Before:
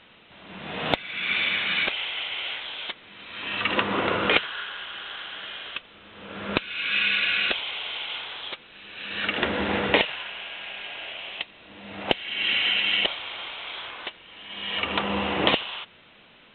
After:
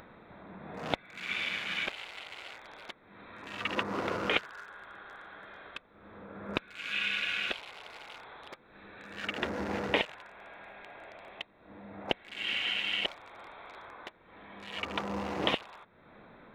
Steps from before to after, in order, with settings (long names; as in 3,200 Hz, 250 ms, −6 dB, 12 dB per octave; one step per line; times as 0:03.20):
adaptive Wiener filter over 15 samples
upward compression, threshold −35 dBFS
level −7.5 dB